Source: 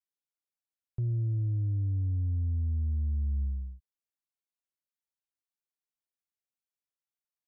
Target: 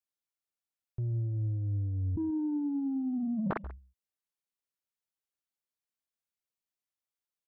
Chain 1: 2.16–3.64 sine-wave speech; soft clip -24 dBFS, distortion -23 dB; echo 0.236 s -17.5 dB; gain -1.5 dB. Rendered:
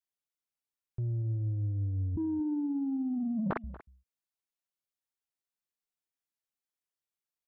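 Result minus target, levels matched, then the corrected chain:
echo 99 ms late
2.16–3.64 sine-wave speech; soft clip -24 dBFS, distortion -23 dB; echo 0.137 s -17.5 dB; gain -1.5 dB

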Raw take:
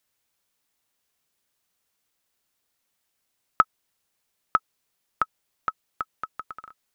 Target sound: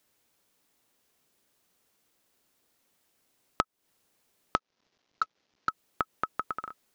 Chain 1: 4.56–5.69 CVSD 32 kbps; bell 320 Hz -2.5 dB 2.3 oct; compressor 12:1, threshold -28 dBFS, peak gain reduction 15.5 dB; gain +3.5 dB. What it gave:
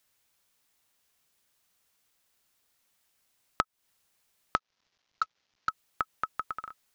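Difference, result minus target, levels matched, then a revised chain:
250 Hz band -4.0 dB
4.56–5.69 CVSD 32 kbps; bell 320 Hz +7.5 dB 2.3 oct; compressor 12:1, threshold -28 dBFS, peak gain reduction 17.5 dB; gain +3.5 dB

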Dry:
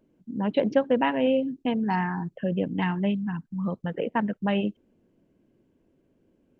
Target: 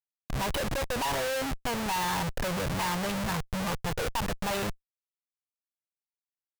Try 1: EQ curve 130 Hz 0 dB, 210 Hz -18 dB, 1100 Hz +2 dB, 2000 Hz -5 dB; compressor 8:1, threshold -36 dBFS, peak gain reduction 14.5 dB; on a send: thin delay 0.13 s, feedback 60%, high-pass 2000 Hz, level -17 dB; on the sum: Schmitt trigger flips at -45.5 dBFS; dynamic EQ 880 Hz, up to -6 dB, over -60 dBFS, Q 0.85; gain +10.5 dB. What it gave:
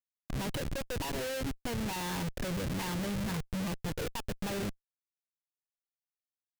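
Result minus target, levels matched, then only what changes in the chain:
compressor: peak gain reduction +6.5 dB; 1000 Hz band -5.0 dB
change: compressor 8:1, threshold -28.5 dBFS, peak gain reduction 8 dB; change: dynamic EQ 280 Hz, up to -6 dB, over -60 dBFS, Q 0.85

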